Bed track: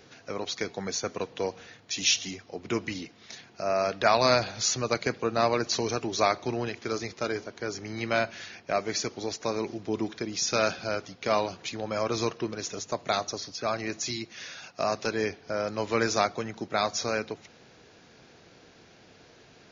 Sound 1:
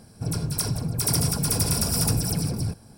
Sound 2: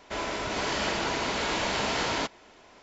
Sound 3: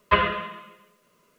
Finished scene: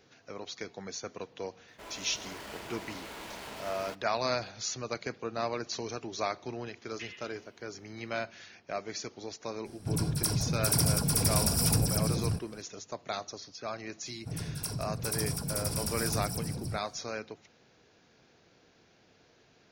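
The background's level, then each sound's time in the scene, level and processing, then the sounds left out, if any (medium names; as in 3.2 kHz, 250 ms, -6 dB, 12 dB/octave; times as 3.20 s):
bed track -8.5 dB
1.68 s: add 2 -14.5 dB + dead-time distortion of 0.077 ms
6.88 s: add 3 -16.5 dB + steep high-pass 2 kHz
9.65 s: add 1 -3.5 dB
14.05 s: add 1 -10 dB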